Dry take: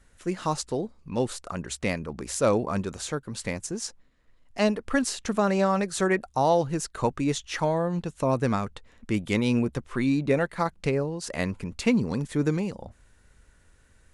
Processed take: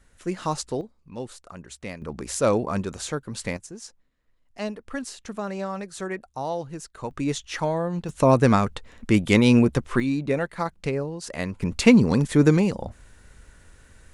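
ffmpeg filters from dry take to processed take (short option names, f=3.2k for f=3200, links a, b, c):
-af "asetnsamples=n=441:p=0,asendcmd='0.81 volume volume -8dB;2.02 volume volume 1.5dB;3.57 volume volume -7.5dB;7.11 volume volume 0dB;8.09 volume volume 7.5dB;10 volume volume -1dB;11.62 volume volume 8dB',volume=0.5dB"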